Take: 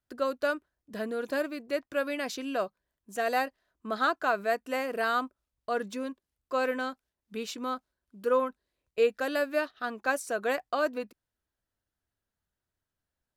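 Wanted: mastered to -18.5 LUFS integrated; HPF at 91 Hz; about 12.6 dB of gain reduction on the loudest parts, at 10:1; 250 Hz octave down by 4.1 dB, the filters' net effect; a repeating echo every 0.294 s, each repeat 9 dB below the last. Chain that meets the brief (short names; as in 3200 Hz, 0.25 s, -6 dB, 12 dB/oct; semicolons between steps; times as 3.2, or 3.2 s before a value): HPF 91 Hz; bell 250 Hz -4.5 dB; compressor 10:1, threshold -34 dBFS; feedback echo 0.294 s, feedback 35%, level -9 dB; gain +21.5 dB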